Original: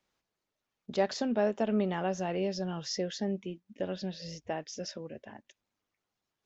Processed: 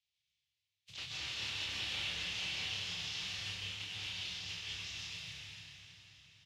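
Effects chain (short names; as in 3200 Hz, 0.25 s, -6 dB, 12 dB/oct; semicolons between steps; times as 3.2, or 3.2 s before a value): spectral contrast lowered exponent 0.3; inverse Chebyshev band-stop 310–950 Hz, stop band 70 dB; compressor 2:1, threshold -41 dBFS, peak gain reduction 7.5 dB; soft clip -36.5 dBFS, distortion -14 dB; BPF 150–2500 Hz; doubler 29 ms -5 dB; on a send: diffused feedback echo 0.453 s, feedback 49%, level -10.5 dB; on the sum: plate-style reverb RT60 2.9 s, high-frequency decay 0.55×, pre-delay 0.115 s, DRR -6.5 dB; gain +6 dB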